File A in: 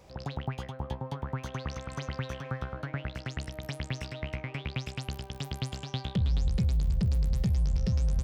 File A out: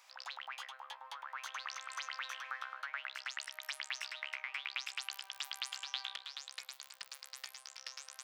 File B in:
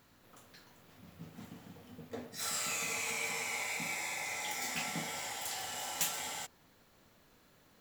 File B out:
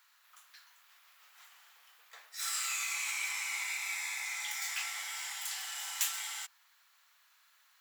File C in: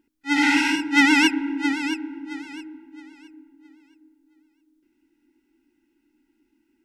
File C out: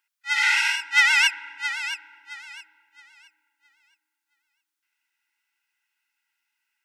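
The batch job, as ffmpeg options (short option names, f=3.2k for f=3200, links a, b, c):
-af "highpass=f=1.1k:w=0.5412,highpass=f=1.1k:w=1.3066,volume=1.5dB"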